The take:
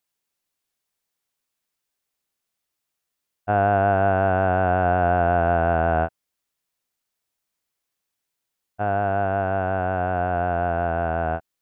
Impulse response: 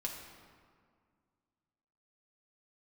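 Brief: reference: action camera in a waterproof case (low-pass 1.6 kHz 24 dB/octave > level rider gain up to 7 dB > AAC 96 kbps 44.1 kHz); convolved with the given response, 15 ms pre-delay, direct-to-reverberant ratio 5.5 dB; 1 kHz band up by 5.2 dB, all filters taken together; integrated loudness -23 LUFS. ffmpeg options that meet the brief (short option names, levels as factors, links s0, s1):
-filter_complex "[0:a]equalizer=f=1000:t=o:g=9,asplit=2[s0][s1];[1:a]atrim=start_sample=2205,adelay=15[s2];[s1][s2]afir=irnorm=-1:irlink=0,volume=0.501[s3];[s0][s3]amix=inputs=2:normalize=0,lowpass=f=1600:w=0.5412,lowpass=f=1600:w=1.3066,dynaudnorm=m=2.24,volume=0.501" -ar 44100 -c:a aac -b:a 96k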